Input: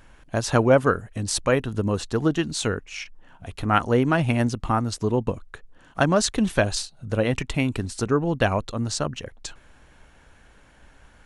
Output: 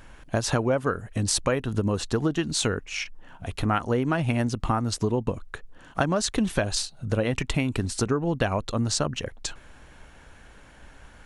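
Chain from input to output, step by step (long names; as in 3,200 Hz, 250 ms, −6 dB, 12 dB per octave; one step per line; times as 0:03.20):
downward compressor 6 to 1, threshold −24 dBFS, peak gain reduction 12 dB
level +3.5 dB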